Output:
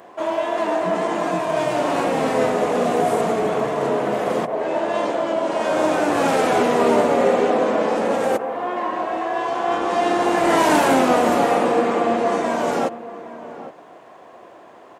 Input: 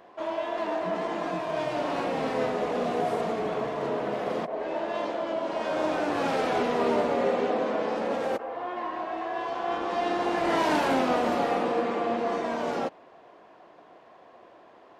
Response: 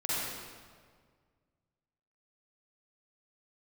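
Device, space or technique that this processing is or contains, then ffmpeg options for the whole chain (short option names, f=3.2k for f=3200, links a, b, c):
budget condenser microphone: -filter_complex "[0:a]highpass=65,highshelf=f=6.1k:t=q:w=1.5:g=7,asplit=2[a][b];[b]adelay=816.3,volume=-14dB,highshelf=f=4k:g=-18.4[c];[a][c]amix=inputs=2:normalize=0,volume=8.5dB"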